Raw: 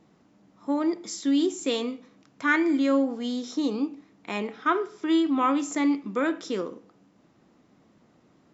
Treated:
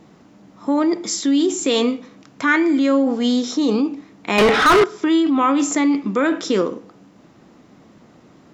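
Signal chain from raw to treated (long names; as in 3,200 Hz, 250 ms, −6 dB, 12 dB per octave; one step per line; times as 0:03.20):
in parallel at −2.5 dB: compressor whose output falls as the input rises −28 dBFS, ratio −0.5
0:04.38–0:04.84: on the sum: mid-hump overdrive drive 31 dB, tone 3,700 Hz, clips at −11 dBFS
level +5 dB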